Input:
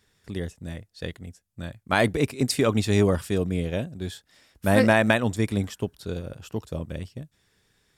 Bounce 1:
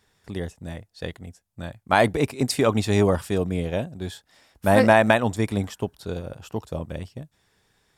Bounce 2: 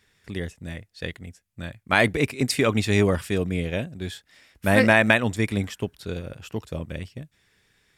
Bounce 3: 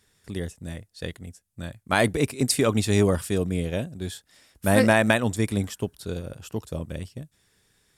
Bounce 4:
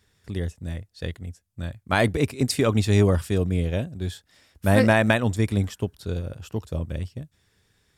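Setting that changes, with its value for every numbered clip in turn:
bell, frequency: 820, 2200, 10000, 81 Hz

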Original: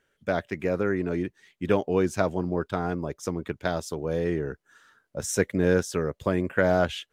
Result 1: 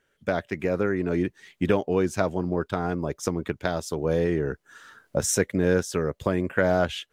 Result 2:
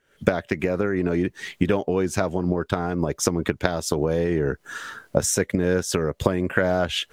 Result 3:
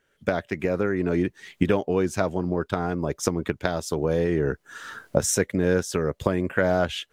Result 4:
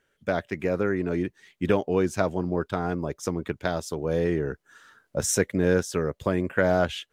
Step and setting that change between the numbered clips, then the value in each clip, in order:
recorder AGC, rising by: 13, 89, 32, 5.2 dB/s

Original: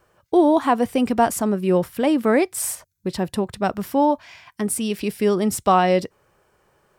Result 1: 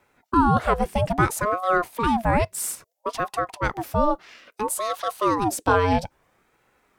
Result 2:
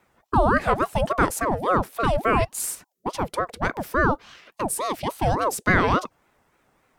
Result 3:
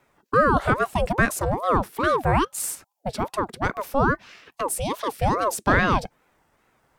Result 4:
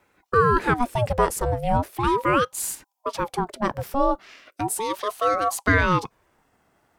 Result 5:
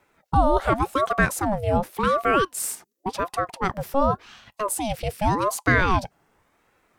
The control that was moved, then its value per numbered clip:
ring modulator with a swept carrier, at: 0.6, 3.5, 2.4, 0.37, 0.89 Hz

